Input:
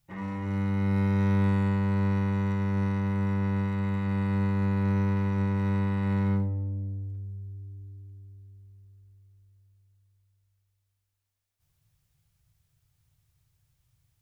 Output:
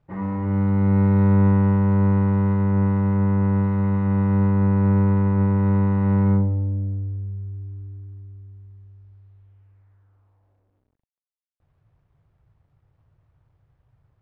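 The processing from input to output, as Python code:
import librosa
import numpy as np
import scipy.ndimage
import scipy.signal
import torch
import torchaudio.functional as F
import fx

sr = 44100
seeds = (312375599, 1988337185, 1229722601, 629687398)

y = fx.cvsd(x, sr, bps=64000)
y = scipy.signal.sosfilt(scipy.signal.butter(2, 1200.0, 'lowpass', fs=sr, output='sos'), y)
y = F.gain(torch.from_numpy(y), 8.0).numpy()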